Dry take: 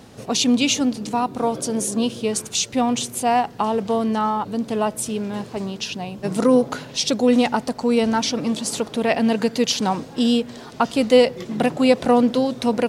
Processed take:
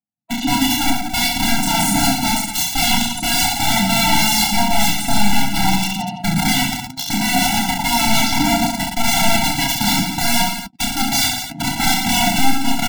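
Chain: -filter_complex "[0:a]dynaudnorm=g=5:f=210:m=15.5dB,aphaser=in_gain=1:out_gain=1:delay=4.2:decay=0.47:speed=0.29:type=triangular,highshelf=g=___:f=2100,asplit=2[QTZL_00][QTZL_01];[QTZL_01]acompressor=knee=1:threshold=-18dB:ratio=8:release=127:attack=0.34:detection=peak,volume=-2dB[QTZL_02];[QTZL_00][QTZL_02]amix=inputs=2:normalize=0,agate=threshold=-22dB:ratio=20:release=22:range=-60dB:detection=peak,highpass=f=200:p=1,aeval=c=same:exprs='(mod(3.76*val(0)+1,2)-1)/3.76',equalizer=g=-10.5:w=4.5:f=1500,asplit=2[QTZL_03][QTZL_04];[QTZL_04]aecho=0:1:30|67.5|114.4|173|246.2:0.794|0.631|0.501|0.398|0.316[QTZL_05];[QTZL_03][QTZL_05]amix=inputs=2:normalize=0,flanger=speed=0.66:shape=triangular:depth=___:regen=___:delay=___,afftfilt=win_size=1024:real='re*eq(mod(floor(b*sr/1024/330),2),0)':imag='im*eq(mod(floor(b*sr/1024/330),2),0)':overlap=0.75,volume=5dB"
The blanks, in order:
-9, 3.3, 61, 4.8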